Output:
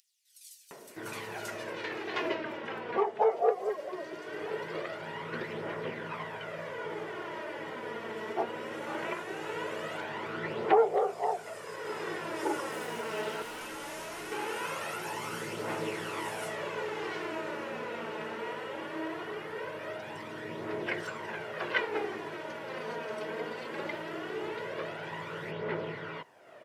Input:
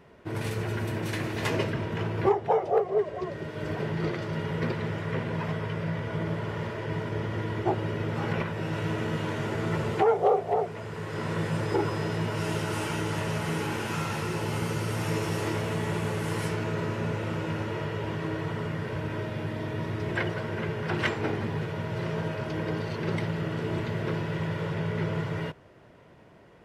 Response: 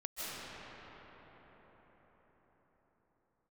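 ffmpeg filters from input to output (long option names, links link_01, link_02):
-filter_complex "[0:a]highpass=380,acompressor=mode=upward:threshold=-42dB:ratio=2.5,aphaser=in_gain=1:out_gain=1:delay=4.7:decay=0.47:speed=0.2:type=triangular,asettb=1/sr,asplit=3[link_01][link_02][link_03];[link_01]atrim=end=12.714[link_04];[link_02]atrim=start=12.71:end=13.61,asetpts=PTS-STARTPTS,afade=type=in:duration=0.004:curve=qsin,afade=type=out:start_time=0.896:duration=0.004:curve=qsin,volume=36dB,asoftclip=hard,volume=-36dB[link_05];[link_03]atrim=start=13.606[link_06];[link_04][link_05]acrossfade=duration=0.004:curve1=hsin:curve2=qsin[link_07];[link_07][link_06]acrossfade=duration=0.004:curve1=qsin:curve2=hsin,acrossover=split=4900[link_08][link_09];[link_08]adelay=710[link_10];[link_10][link_09]amix=inputs=2:normalize=0,volume=-3dB"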